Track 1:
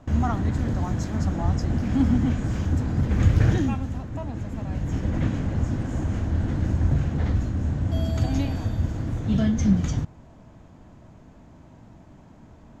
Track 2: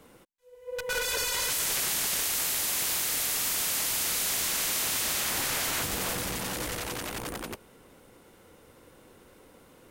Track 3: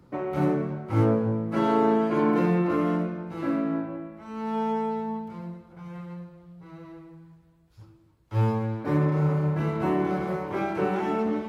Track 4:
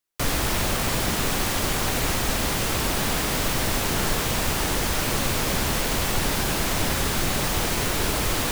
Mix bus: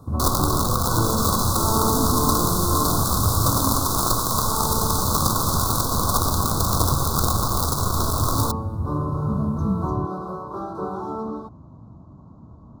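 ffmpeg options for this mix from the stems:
ffmpeg -i stem1.wav -i stem2.wav -i stem3.wav -i stem4.wav -filter_complex "[0:a]highpass=100,aemphasis=mode=reproduction:type=riaa,acompressor=threshold=-31dB:ratio=1.5,volume=-4dB[link_01];[1:a]volume=-1dB[link_02];[2:a]volume=-4dB[link_03];[3:a]acrusher=bits=4:dc=4:mix=0:aa=0.000001,volume=0.5dB[link_04];[link_01][link_02][link_03][link_04]amix=inputs=4:normalize=0,asuperstop=centerf=2300:order=12:qfactor=1,equalizer=frequency=1100:width=4.6:gain=13" out.wav

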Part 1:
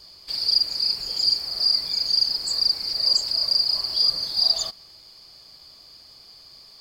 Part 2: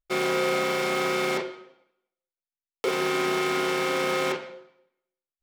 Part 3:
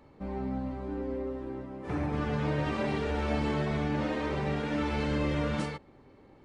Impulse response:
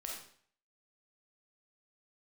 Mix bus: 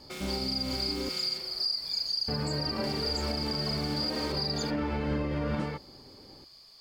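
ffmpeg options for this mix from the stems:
-filter_complex "[0:a]volume=-6.5dB[link_01];[1:a]acrossover=split=180|3000[link_02][link_03][link_04];[link_03]acompressor=threshold=-38dB:ratio=6[link_05];[link_02][link_05][link_04]amix=inputs=3:normalize=0,volume=-6dB[link_06];[2:a]lowpass=frequency=1900:poles=1,volume=3dB,asplit=3[link_07][link_08][link_09];[link_07]atrim=end=1.09,asetpts=PTS-STARTPTS,afade=type=out:start_time=1.086:duration=0.004:curve=hsin[link_10];[link_08]atrim=start=1.09:end=2.28,asetpts=PTS-STARTPTS,volume=0[link_11];[link_09]atrim=start=2.28,asetpts=PTS-STARTPTS,afade=type=in:duration=0.004:curve=hsin[link_12];[link_10][link_11][link_12]concat=n=3:v=0:a=1[link_13];[link_01][link_06][link_13]amix=inputs=3:normalize=0,alimiter=limit=-22dB:level=0:latency=1:release=134"

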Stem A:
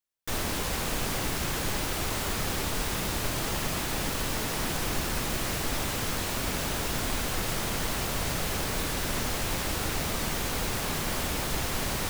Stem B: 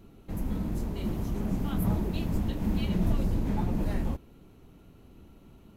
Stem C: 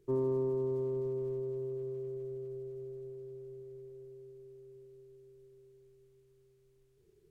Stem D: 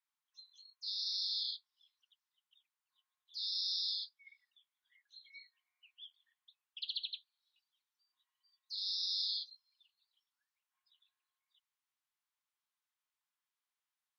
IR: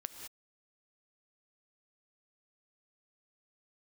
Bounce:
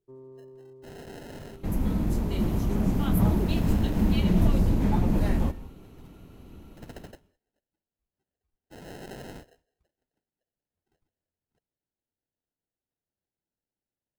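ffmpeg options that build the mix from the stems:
-filter_complex "[1:a]adelay=1350,volume=2.5dB,asplit=2[link_01][link_02];[link_02]volume=-6dB[link_03];[2:a]volume=-16dB[link_04];[3:a]aemphasis=mode=reproduction:type=75fm,acrusher=samples=38:mix=1:aa=0.000001,acontrast=58,volume=-5.5dB,asplit=2[link_05][link_06];[link_06]volume=-17dB[link_07];[4:a]atrim=start_sample=2205[link_08];[link_03][link_07]amix=inputs=2:normalize=0[link_09];[link_09][link_08]afir=irnorm=-1:irlink=0[link_10];[link_01][link_04][link_05][link_10]amix=inputs=4:normalize=0"

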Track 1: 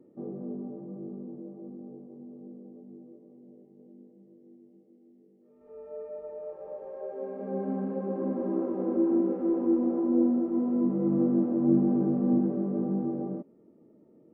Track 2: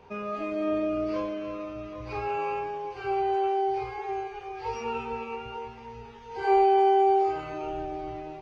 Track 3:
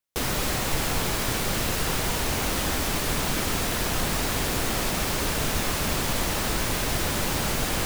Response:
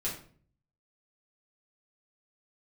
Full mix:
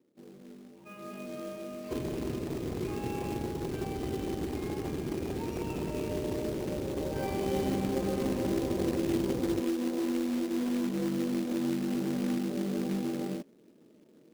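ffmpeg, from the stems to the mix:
-filter_complex "[0:a]acompressor=threshold=-26dB:ratio=16,volume=-1dB,afade=type=in:start_time=0.93:duration=0.41:silence=0.251189[link_01];[1:a]equalizer=frequency=280:width_type=o:width=1.5:gain=-14,adelay=750,volume=-13.5dB,asplit=2[link_02][link_03];[link_03]volume=-3.5dB[link_04];[2:a]lowpass=frequency=370:width_type=q:width=4.2,lowshelf=frequency=160:gain=7,aeval=exprs='0.188*(abs(mod(val(0)/0.188+3,4)-2)-1)':channel_layout=same,adelay=1750,volume=-10.5dB[link_05];[3:a]atrim=start_sample=2205[link_06];[link_04][link_06]afir=irnorm=-1:irlink=0[link_07];[link_01][link_02][link_05][link_07]amix=inputs=4:normalize=0,highpass=81,bandreject=frequency=1400:width=6.6,acrusher=bits=3:mode=log:mix=0:aa=0.000001"

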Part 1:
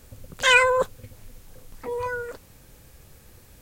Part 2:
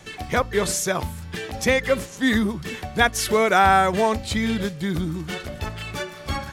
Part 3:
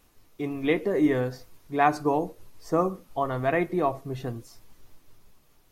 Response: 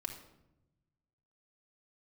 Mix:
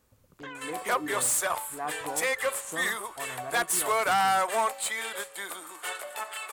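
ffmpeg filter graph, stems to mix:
-filter_complex "[0:a]acrossover=split=3300[link_01][link_02];[link_02]acompressor=threshold=-45dB:ratio=4:attack=1:release=60[link_03];[link_01][link_03]amix=inputs=2:normalize=0,acompressor=threshold=-27dB:ratio=6,volume=-16.5dB[link_04];[1:a]highpass=frequency=550:width=0.5412,highpass=frequency=550:width=1.3066,highshelf=frequency=6900:width_type=q:width=3:gain=7,aeval=exprs='(tanh(11.2*val(0)+0.25)-tanh(0.25))/11.2':channel_layout=same,adelay=550,volume=-2dB[link_05];[2:a]lowpass=1700,volume=-15.5dB[link_06];[link_04][link_05][link_06]amix=inputs=3:normalize=0,highpass=frequency=79:poles=1,equalizer=frequency=1100:width=1.7:gain=5.5"

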